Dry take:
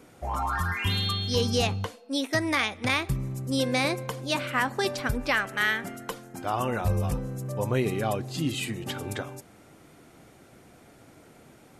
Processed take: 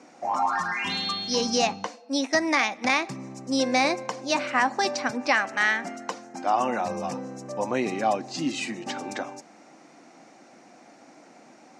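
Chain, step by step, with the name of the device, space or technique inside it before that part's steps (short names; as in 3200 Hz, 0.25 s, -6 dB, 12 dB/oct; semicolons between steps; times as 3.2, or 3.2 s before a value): television speaker (speaker cabinet 220–6900 Hz, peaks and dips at 420 Hz -9 dB, 780 Hz +5 dB, 1400 Hz -4 dB, 3300 Hz -9 dB, 5800 Hz +5 dB); gain +4 dB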